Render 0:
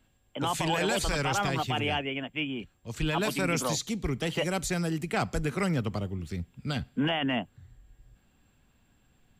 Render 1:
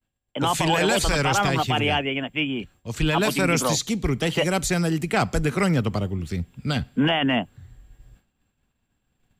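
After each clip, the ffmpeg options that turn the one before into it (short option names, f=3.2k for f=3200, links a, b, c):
-af "agate=range=-33dB:threshold=-54dB:ratio=3:detection=peak,volume=7dB"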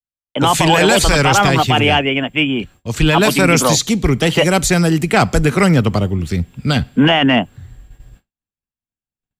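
-af "acontrast=34,agate=range=-33dB:threshold=-41dB:ratio=3:detection=peak,volume=4dB"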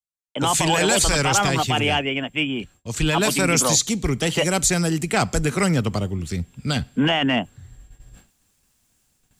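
-af "equalizer=f=7.7k:w=0.89:g=8.5,areverse,acompressor=mode=upward:threshold=-31dB:ratio=2.5,areverse,volume=-8dB"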